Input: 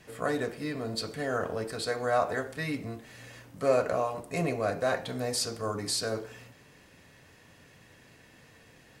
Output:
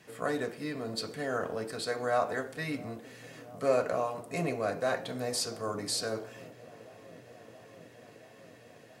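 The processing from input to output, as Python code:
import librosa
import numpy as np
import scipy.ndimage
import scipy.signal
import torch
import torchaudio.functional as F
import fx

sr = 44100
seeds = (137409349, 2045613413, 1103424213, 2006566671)

y = scipy.signal.sosfilt(scipy.signal.butter(2, 120.0, 'highpass', fs=sr, output='sos'), x)
y = fx.echo_wet_lowpass(y, sr, ms=676, feedback_pct=81, hz=890.0, wet_db=-19.5)
y = y * librosa.db_to_amplitude(-2.0)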